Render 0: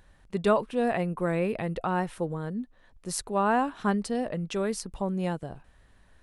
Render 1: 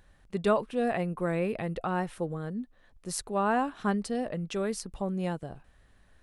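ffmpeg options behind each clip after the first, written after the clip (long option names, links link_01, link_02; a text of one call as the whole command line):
ffmpeg -i in.wav -af "bandreject=frequency=950:width=15,volume=-2dB" out.wav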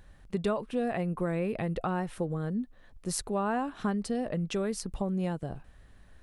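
ffmpeg -i in.wav -af "lowshelf=frequency=330:gain=4.5,acompressor=threshold=-30dB:ratio=3,volume=2dB" out.wav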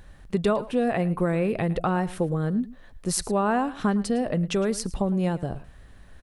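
ffmpeg -i in.wav -af "aecho=1:1:109:0.126,volume=6.5dB" out.wav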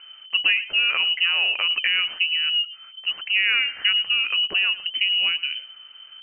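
ffmpeg -i in.wav -af "lowpass=frequency=2600:width_type=q:width=0.5098,lowpass=frequency=2600:width_type=q:width=0.6013,lowpass=frequency=2600:width_type=q:width=0.9,lowpass=frequency=2600:width_type=q:width=2.563,afreqshift=-3100,volume=2.5dB" out.wav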